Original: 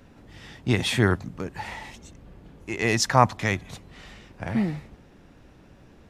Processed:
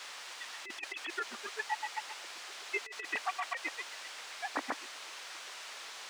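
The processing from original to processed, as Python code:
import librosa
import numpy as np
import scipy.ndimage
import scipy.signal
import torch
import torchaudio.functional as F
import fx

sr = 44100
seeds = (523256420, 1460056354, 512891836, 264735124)

y = fx.sine_speech(x, sr)
y = fx.echo_feedback(y, sr, ms=101, feedback_pct=27, wet_db=-5)
y = fx.granulator(y, sr, seeds[0], grain_ms=70.0, per_s=7.7, spray_ms=100.0, spread_st=0)
y = fx.dmg_noise_colour(y, sr, seeds[1], colour='white', level_db=-43.0)
y = scipy.signal.sosfilt(scipy.signal.butter(2, 750.0, 'highpass', fs=sr, output='sos'), y)
y = fx.over_compress(y, sr, threshold_db=-34.0, ratio=-0.5)
y = fx.air_absorb(y, sr, metres=110.0)
y = y * librosa.db_to_amplitude(2.5)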